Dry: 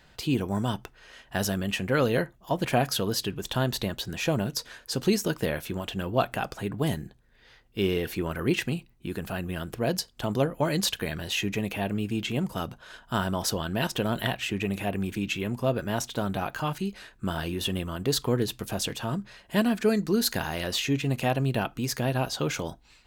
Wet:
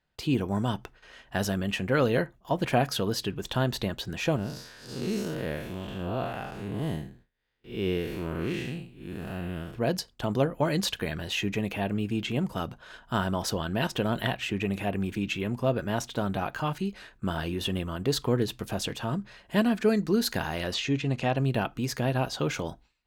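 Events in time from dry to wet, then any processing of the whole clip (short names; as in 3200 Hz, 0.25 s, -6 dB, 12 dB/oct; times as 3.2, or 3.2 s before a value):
4.36–9.75 time blur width 0.177 s
20.74–21.37 Chebyshev low-pass 6300 Hz
whole clip: high shelf 5800 Hz -7.5 dB; gate with hold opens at -44 dBFS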